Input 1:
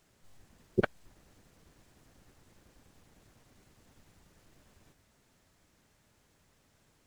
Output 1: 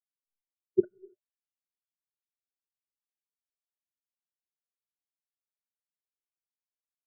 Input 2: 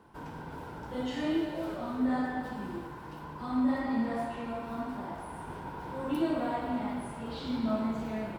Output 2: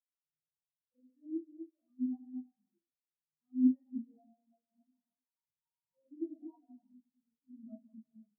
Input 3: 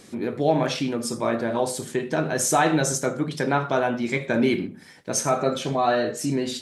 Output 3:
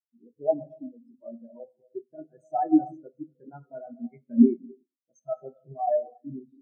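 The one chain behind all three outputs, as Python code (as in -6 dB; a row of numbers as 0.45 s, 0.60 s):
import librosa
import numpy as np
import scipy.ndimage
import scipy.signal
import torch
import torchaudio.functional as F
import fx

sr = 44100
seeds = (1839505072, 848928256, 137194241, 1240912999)

y = fx.rev_gated(x, sr, seeds[0], gate_ms=360, shape='flat', drr_db=4.0)
y = fx.spectral_expand(y, sr, expansion=4.0)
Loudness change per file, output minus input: +3.5 LU, -2.5 LU, -2.5 LU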